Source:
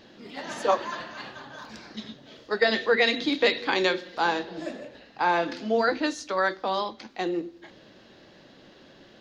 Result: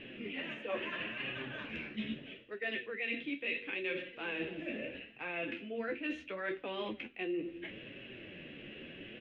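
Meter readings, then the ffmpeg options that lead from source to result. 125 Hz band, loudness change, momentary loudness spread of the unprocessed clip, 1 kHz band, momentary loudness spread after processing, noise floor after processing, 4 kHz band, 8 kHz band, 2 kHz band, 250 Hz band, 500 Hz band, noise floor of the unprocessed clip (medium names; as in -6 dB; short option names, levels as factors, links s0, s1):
-6.0 dB, -13.5 dB, 19 LU, -20.5 dB, 11 LU, -55 dBFS, -13.0 dB, under -30 dB, -10.0 dB, -9.0 dB, -14.0 dB, -53 dBFS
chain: -af "firequalizer=gain_entry='entry(440,0);entry(860,-14);entry(2600,12);entry(4500,-27)':delay=0.05:min_phase=1,areverse,acompressor=threshold=0.01:ratio=6,areverse,flanger=delay=7.2:depth=6.9:regen=42:speed=0.75:shape=sinusoidal,volume=2.24"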